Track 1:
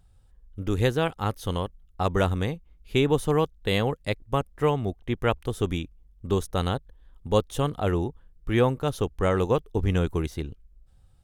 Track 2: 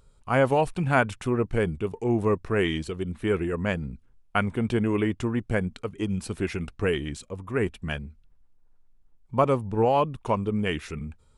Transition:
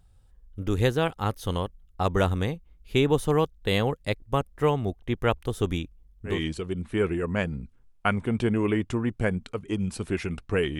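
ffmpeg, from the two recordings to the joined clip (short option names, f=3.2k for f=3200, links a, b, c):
-filter_complex "[0:a]apad=whole_dur=10.79,atrim=end=10.79,atrim=end=6.44,asetpts=PTS-STARTPTS[a];[1:a]atrim=start=2.54:end=7.09,asetpts=PTS-STARTPTS[b];[a][b]acrossfade=d=0.2:c1=tri:c2=tri"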